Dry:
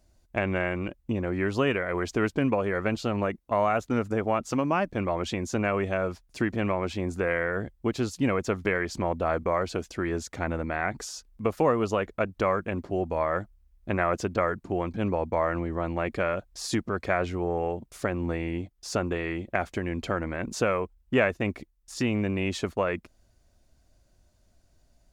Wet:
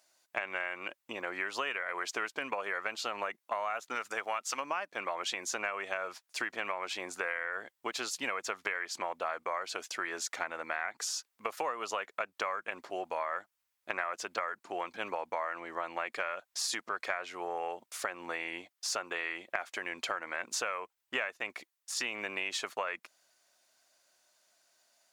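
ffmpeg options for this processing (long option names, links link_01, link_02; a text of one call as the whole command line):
ffmpeg -i in.wav -filter_complex "[0:a]asettb=1/sr,asplit=3[link_01][link_02][link_03];[link_01]atrim=end=3.954[link_04];[link_02]atrim=start=3.95:end=4.6,asetpts=PTS-STARTPTS,afade=type=in:duration=0.004:curve=qsin,afade=type=out:start_time=0.646:duration=0.004:curve=qsin,tiltshelf=frequency=970:gain=-4.5[link_05];[link_03]atrim=start=4.596[link_06];[link_04][link_05]acrossfade=duration=0.004:curve1=hsin:curve2=qsin[link_07];[link_07][link_06]acrossfade=duration=0.004:curve1=qsin:curve2=hsin,highpass=990,acompressor=threshold=-36dB:ratio=6,volume=5dB" out.wav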